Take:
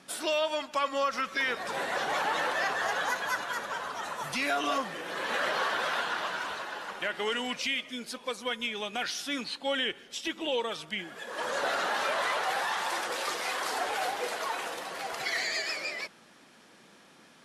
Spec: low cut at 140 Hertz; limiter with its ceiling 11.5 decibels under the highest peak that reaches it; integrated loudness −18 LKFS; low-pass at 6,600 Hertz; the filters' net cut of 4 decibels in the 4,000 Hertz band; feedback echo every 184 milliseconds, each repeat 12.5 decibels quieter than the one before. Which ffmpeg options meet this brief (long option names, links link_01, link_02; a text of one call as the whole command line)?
ffmpeg -i in.wav -af "highpass=140,lowpass=6600,equalizer=frequency=4000:width_type=o:gain=-5,alimiter=level_in=6dB:limit=-24dB:level=0:latency=1,volume=-6dB,aecho=1:1:184|368|552:0.237|0.0569|0.0137,volume=20dB" out.wav